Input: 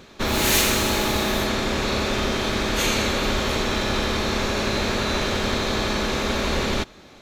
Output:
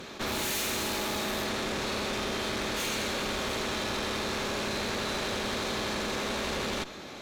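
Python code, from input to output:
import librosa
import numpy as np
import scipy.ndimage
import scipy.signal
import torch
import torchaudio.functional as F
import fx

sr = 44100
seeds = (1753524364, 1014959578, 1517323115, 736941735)

y = fx.low_shelf(x, sr, hz=90.0, db=-11.5)
y = fx.tube_stage(y, sr, drive_db=26.0, bias=0.75)
y = fx.env_flatten(y, sr, amount_pct=50)
y = F.gain(torch.from_numpy(y), -3.0).numpy()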